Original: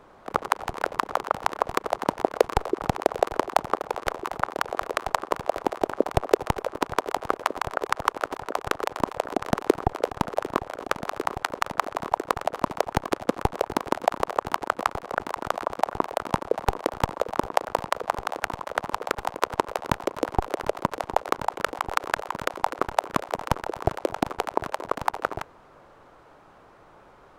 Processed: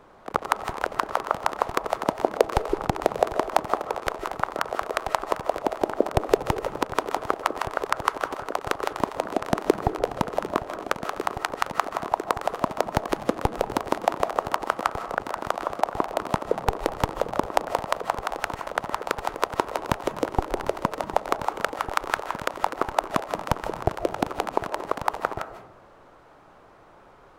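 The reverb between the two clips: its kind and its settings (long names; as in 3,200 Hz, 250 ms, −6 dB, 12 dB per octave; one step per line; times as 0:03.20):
comb and all-pass reverb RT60 0.65 s, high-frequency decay 0.3×, pre-delay 110 ms, DRR 10.5 dB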